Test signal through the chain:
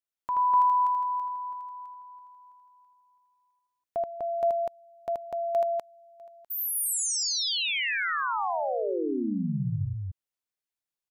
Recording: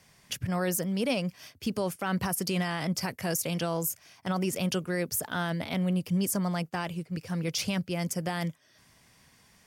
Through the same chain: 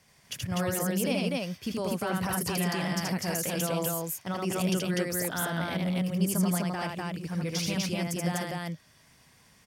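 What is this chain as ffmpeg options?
-af "aecho=1:1:78.72|247.8:0.794|0.891,volume=0.708"

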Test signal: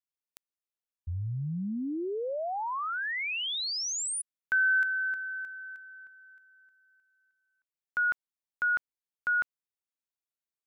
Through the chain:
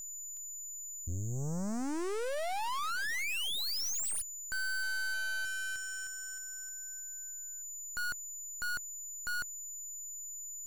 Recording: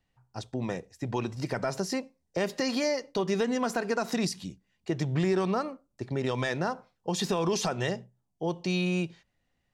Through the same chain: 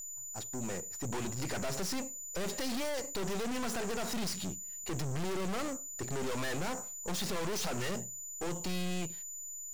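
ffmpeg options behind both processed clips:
-af "equalizer=f=110:t=o:w=0.42:g=-5,dynaudnorm=f=160:g=13:m=3.16,aeval=exprs='val(0)+0.0141*sin(2*PI*7000*n/s)':c=same,aeval=exprs='(tanh(56.2*val(0)+0.75)-tanh(0.75))/56.2':c=same"

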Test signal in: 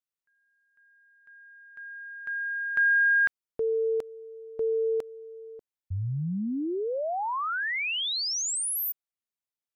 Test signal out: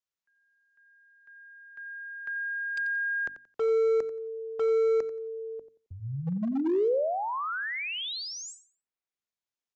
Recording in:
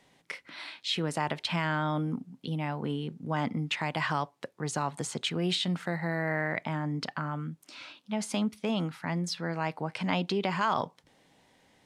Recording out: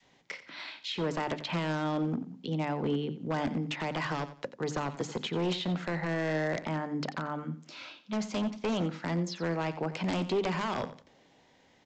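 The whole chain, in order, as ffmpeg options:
-filter_complex "[0:a]acrossover=split=130|590|1200|3300[s0][s1][s2][s3][s4];[s0]acompressor=threshold=0.00447:ratio=6[s5];[s1]acompressor=threshold=0.0398:ratio=8[s6];[s2]acompressor=threshold=0.00891:ratio=8[s7];[s3]acompressor=threshold=0.0141:ratio=6[s8];[s4]acompressor=threshold=0.00562:ratio=3[s9];[s5][s6][s7][s8][s9]amix=inputs=5:normalize=0,bandreject=f=50:t=h:w=6,bandreject=f=100:t=h:w=6,bandreject=f=150:t=h:w=6,bandreject=f=200:t=h:w=6,bandreject=f=250:t=h:w=6,bandreject=f=300:t=h:w=6,aresample=16000,aeval=exprs='0.0422*(abs(mod(val(0)/0.0422+3,4)-2)-1)':c=same,aresample=44100,adynamicequalizer=threshold=0.00501:dfrequency=440:dqfactor=0.73:tfrequency=440:tqfactor=0.73:attack=5:release=100:ratio=0.375:range=3:mode=boostabove:tftype=bell,aecho=1:1:89|178|267:0.2|0.0479|0.0115"

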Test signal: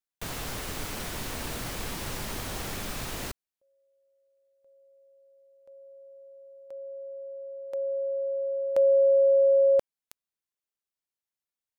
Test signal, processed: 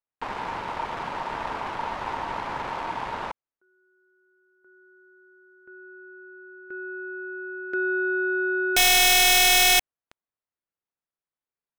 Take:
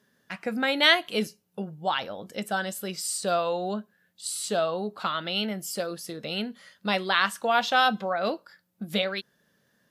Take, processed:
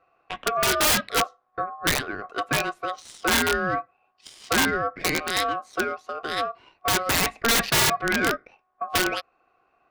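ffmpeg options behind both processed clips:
-af "adynamicsmooth=sensitivity=2.5:basefreq=1500,aeval=exprs='val(0)*sin(2*PI*920*n/s)':c=same,aeval=exprs='(mod(11.2*val(0)+1,2)-1)/11.2':c=same,volume=2.51"

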